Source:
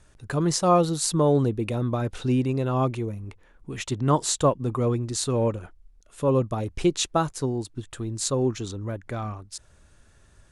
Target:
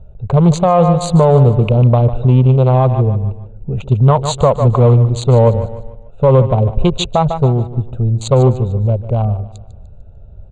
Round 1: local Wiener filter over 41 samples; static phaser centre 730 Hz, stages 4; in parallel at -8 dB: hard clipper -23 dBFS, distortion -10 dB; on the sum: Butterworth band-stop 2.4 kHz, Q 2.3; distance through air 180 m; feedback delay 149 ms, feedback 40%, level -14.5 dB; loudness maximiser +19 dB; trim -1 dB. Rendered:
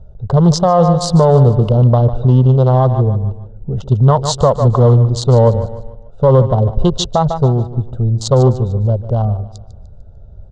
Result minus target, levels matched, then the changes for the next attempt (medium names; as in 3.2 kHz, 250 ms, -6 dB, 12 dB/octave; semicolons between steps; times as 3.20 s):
2 kHz band -4.5 dB
change: Butterworth band-stop 5.3 kHz, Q 2.3